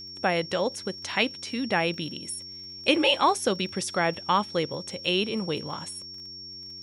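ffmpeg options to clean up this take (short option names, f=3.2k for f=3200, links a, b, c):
-af "adeclick=t=4,bandreject=f=92.3:t=h:w=4,bandreject=f=184.6:t=h:w=4,bandreject=f=276.9:t=h:w=4,bandreject=f=369.2:t=h:w=4,bandreject=f=5.5k:w=30"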